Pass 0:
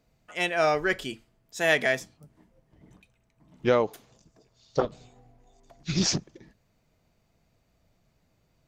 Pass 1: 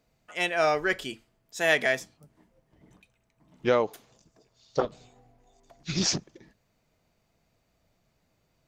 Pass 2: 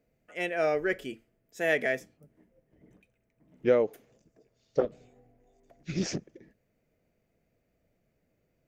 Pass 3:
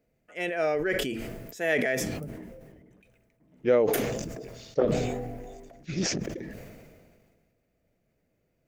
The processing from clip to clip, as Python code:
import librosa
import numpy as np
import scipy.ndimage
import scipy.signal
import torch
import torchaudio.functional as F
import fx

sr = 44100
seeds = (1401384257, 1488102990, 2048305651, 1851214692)

y1 = fx.low_shelf(x, sr, hz=240.0, db=-5.0)
y2 = fx.graphic_eq(y1, sr, hz=(250, 500, 1000, 2000, 4000, 8000), db=(3, 7, -10, 4, -10, -5))
y2 = F.gain(torch.from_numpy(y2), -4.0).numpy()
y3 = fx.sustainer(y2, sr, db_per_s=31.0)